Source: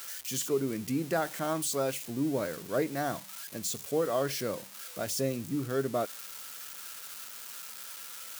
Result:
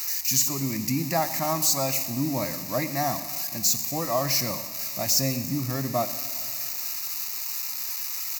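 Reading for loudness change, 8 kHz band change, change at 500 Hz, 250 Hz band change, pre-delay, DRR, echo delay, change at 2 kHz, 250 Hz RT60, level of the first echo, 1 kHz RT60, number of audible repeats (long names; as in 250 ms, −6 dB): +8.0 dB, +11.5 dB, 0.0 dB, +3.5 dB, 6 ms, 11.0 dB, 124 ms, +4.5 dB, 2.2 s, −17.5 dB, 2.1 s, 1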